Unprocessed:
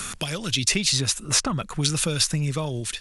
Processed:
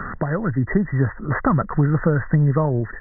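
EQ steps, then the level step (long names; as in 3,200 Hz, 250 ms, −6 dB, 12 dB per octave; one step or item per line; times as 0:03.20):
linear-phase brick-wall low-pass 2,000 Hz
+8.5 dB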